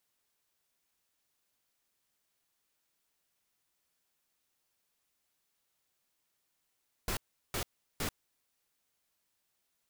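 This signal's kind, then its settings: noise bursts pink, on 0.09 s, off 0.37 s, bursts 3, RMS -34.5 dBFS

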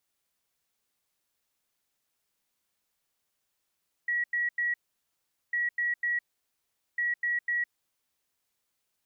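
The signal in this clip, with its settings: beep pattern sine 1.92 kHz, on 0.16 s, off 0.09 s, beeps 3, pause 0.79 s, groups 3, -25.5 dBFS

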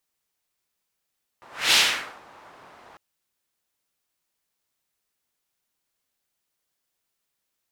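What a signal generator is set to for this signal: whoosh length 1.55 s, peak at 0.32 s, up 0.27 s, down 0.51 s, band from 950 Hz, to 3.6 kHz, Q 1.3, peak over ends 32 dB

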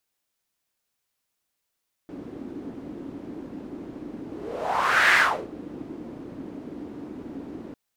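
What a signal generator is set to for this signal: whoosh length 5.65 s, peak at 3.07 s, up 0.96 s, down 0.36 s, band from 290 Hz, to 1.8 kHz, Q 3.7, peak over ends 20 dB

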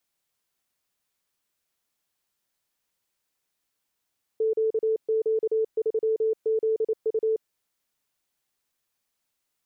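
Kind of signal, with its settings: Morse "QQ3ZU" 28 wpm 441 Hz -20.5 dBFS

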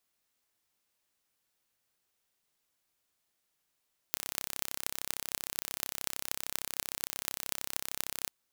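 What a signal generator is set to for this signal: pulse train 33.1 per s, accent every 8, -3 dBFS 4.16 s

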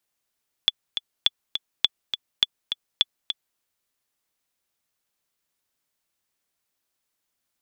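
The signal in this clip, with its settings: metronome 206 bpm, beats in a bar 2, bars 5, 3.44 kHz, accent 8.5 dB -4 dBFS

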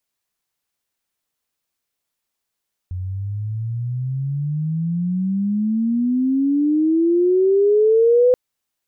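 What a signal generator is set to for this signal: gliding synth tone sine, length 5.43 s, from 89.4 Hz, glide +30 st, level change +13.5 dB, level -10 dB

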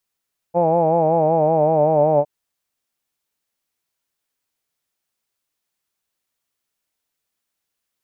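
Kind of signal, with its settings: formant-synthesis vowel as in hawed, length 1.71 s, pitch 168 Hz, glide -2 st, vibrato depth 0.75 st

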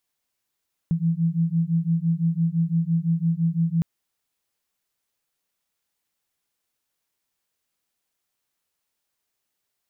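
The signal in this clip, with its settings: beating tones 163 Hz, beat 5.9 Hz, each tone -22.5 dBFS 2.91 s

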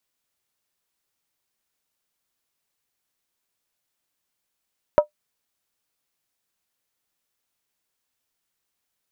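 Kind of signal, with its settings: skin hit, lowest mode 598 Hz, decay 0.11 s, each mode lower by 9 dB, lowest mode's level -6 dB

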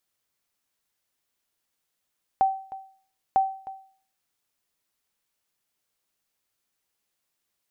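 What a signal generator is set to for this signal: sonar ping 771 Hz, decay 0.48 s, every 0.95 s, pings 2, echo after 0.31 s, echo -17.5 dB -13.5 dBFS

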